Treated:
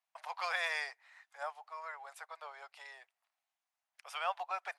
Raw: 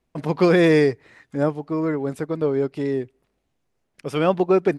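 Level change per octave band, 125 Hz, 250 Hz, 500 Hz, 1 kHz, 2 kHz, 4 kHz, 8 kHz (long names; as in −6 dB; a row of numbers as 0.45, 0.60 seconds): below −40 dB, below −40 dB, −29.0 dB, −9.5 dB, −9.0 dB, −9.0 dB, can't be measured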